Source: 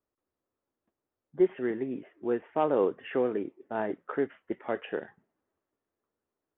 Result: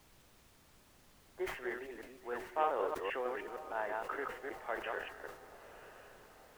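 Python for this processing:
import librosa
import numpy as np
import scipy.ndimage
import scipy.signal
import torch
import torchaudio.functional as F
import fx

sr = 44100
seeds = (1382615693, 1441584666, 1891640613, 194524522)

p1 = fx.reverse_delay(x, sr, ms=155, wet_db=-2)
p2 = scipy.signal.sosfilt(scipy.signal.butter(2, 1000.0, 'highpass', fs=sr, output='sos'), p1)
p3 = fx.high_shelf(p2, sr, hz=2700.0, db=-10.5)
p4 = fx.dmg_noise_colour(p3, sr, seeds[0], colour='pink', level_db=-65.0)
p5 = p4 + fx.echo_diffused(p4, sr, ms=991, feedback_pct=51, wet_db=-15.5, dry=0)
p6 = fx.sustainer(p5, sr, db_per_s=96.0)
y = p6 * librosa.db_to_amplitude(1.0)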